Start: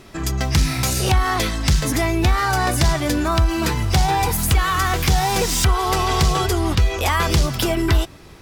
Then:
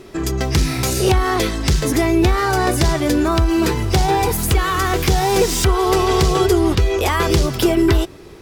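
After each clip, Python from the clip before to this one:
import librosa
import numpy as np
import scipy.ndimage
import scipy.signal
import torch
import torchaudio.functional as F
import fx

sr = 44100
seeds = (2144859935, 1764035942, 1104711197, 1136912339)

y = fx.peak_eq(x, sr, hz=390.0, db=10.5, octaves=0.71)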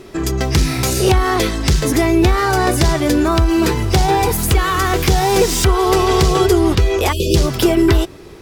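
y = fx.spec_erase(x, sr, start_s=7.12, length_s=0.23, low_hz=630.0, high_hz=2400.0)
y = F.gain(torch.from_numpy(y), 2.0).numpy()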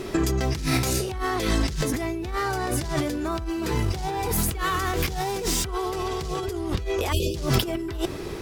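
y = fx.over_compress(x, sr, threshold_db=-23.0, ratio=-1.0)
y = F.gain(torch.from_numpy(y), -3.5).numpy()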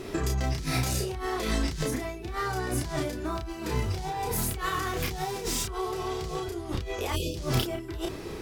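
y = fx.doubler(x, sr, ms=32.0, db=-3.0)
y = F.gain(torch.from_numpy(y), -6.0).numpy()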